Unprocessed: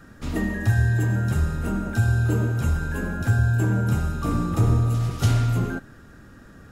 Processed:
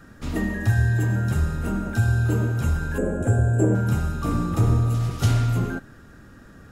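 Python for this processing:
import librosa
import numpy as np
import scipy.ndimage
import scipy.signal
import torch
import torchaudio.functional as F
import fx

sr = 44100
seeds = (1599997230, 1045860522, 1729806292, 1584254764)

y = fx.curve_eq(x, sr, hz=(170.0, 550.0, 880.0, 1400.0, 2300.0, 3300.0, 4900.0, 7800.0, 13000.0), db=(0, 13, -2, -5, -7, -9, -24, 8, -13), at=(2.98, 3.75))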